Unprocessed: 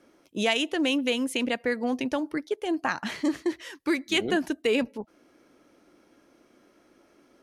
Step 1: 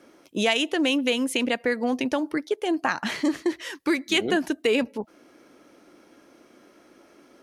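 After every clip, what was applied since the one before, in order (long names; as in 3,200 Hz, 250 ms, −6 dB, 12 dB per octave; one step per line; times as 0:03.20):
low-shelf EQ 93 Hz −9 dB
in parallel at +1 dB: downward compressor, threshold −32 dBFS, peak gain reduction 12.5 dB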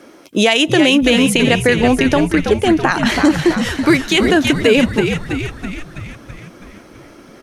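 on a send: echo with shifted repeats 328 ms, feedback 59%, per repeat −81 Hz, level −7.5 dB
on the sum: boost into a limiter +12.5 dB
level −1 dB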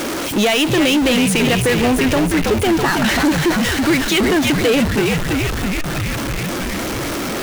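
converter with a step at zero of −25.5 dBFS
power curve on the samples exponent 0.5
wow of a warped record 33 1/3 rpm, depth 100 cents
level −7 dB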